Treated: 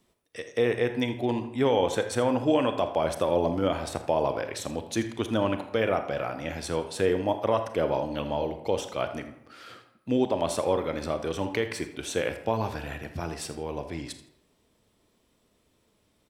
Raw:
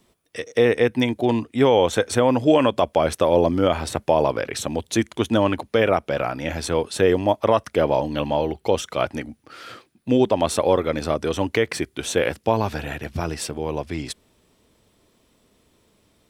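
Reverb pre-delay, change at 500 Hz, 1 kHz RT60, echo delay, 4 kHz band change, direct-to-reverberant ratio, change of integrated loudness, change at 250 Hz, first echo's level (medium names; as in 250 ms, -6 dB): 30 ms, -7.0 dB, 0.80 s, 82 ms, -7.0 dB, 8.0 dB, -7.0 dB, -7.0 dB, -15.5 dB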